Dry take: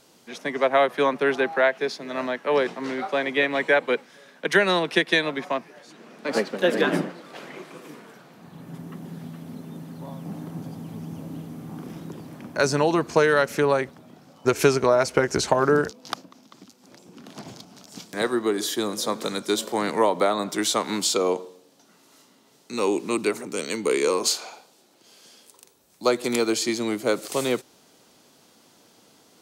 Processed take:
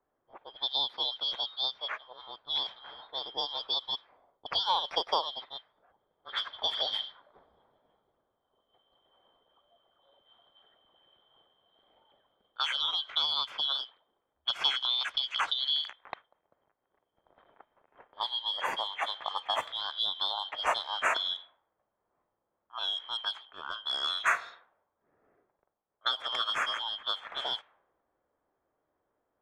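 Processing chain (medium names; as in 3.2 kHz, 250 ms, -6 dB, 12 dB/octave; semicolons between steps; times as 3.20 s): four frequency bands reordered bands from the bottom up 3412; three-band isolator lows -20 dB, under 590 Hz, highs -24 dB, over 2.2 kHz; level-controlled noise filter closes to 350 Hz, open at -31 dBFS; trim +3 dB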